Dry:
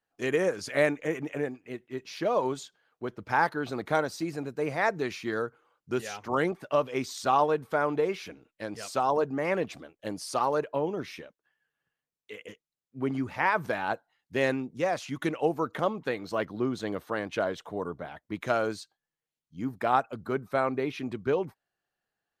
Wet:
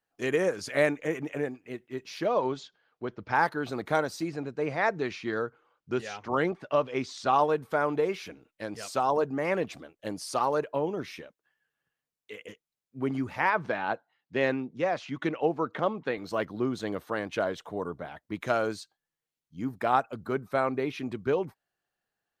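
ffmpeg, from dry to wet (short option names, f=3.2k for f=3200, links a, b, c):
-filter_complex "[0:a]asettb=1/sr,asplit=3[a][b][c];[a]atrim=end=2.264[d];[b]atrim=start=2.26:end=3.35,asetpts=PTS-STARTPTS,afade=t=in:d=0.004:c=qsin,afade=t=out:st=1.086:d=0.004:c=qsin,lowpass=f=5.5k:w=0.5412,lowpass=f=5.5k:w=1.3066[e];[c]atrim=start=3.346[f];[d][e]acrossfade=d=0.004:c1=hsin:c2=qsin[g];[g][f]acrossfade=d=0.004:c1=qsin:c2=hsin,asettb=1/sr,asplit=3[h][i][j];[h]atrim=end=4.284[k];[i]atrim=start=4.28:end=7.34,asetpts=PTS-STARTPTS,afade=t=in:d=0.004:c=qsin,afade=t=out:st=3.056:d=0.004:c=qsin,lowpass=5.3k[l];[j]atrim=start=7.336[m];[k][l]acrossfade=d=0.004:c1=hsin:c2=qsin[n];[n][m]acrossfade=d=0.004:c1=qsin:c2=hsin,asettb=1/sr,asplit=3[o][p][q];[o]atrim=end=13.504[r];[p]atrim=start=13.5:end=16.18,asetpts=PTS-STARTPTS,afade=t=in:d=0.004:c=qsin,afade=t=out:st=2.676:d=0.004:c=qsin,highpass=110,lowpass=4.1k[s];[q]atrim=start=16.176[t];[r][s]acrossfade=d=0.004:c1=hsin:c2=qsin[u];[u][t]acrossfade=d=0.004:c1=qsin:c2=hsin"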